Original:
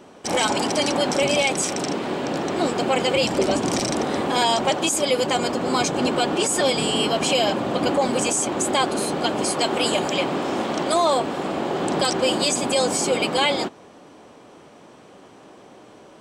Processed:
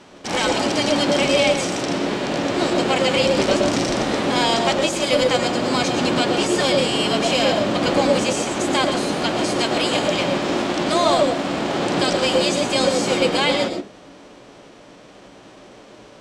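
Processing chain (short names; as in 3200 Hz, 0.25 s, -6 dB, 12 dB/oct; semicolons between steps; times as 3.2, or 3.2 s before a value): spectral whitening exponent 0.6; LPF 5800 Hz 12 dB/oct; on a send: resonant low shelf 640 Hz +11.5 dB, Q 1.5 + reverb RT60 0.20 s, pre-delay 85 ms, DRR 3.5 dB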